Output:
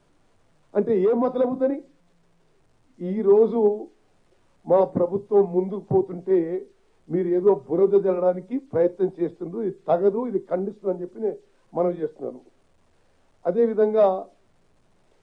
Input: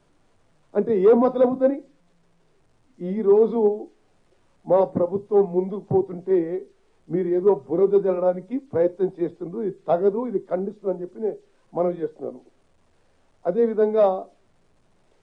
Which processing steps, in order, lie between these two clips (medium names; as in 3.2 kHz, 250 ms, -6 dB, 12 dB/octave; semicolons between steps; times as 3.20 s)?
1.01–1.70 s: compression, threshold -17 dBFS, peak gain reduction 7 dB